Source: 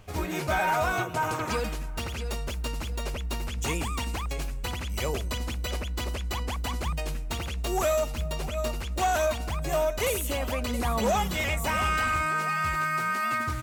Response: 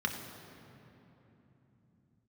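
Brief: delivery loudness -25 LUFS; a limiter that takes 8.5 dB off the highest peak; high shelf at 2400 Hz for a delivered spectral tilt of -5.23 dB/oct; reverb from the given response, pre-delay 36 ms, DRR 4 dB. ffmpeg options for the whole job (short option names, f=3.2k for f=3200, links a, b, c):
-filter_complex "[0:a]highshelf=f=2.4k:g=-5.5,alimiter=level_in=3.5dB:limit=-24dB:level=0:latency=1,volume=-3.5dB,asplit=2[a][b];[1:a]atrim=start_sample=2205,adelay=36[c];[b][c]afir=irnorm=-1:irlink=0,volume=-10.5dB[d];[a][d]amix=inputs=2:normalize=0,volume=8.5dB"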